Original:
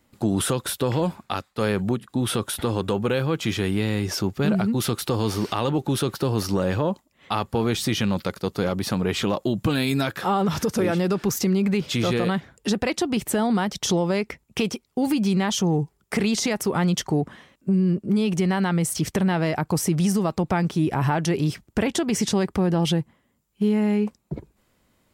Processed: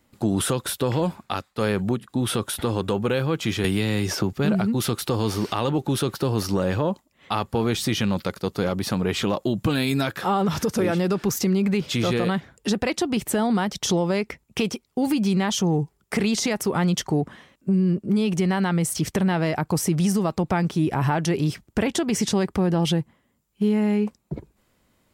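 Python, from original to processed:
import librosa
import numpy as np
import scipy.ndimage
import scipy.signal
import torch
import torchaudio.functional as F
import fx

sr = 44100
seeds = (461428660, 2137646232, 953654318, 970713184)

y = fx.band_squash(x, sr, depth_pct=100, at=(3.64, 4.33))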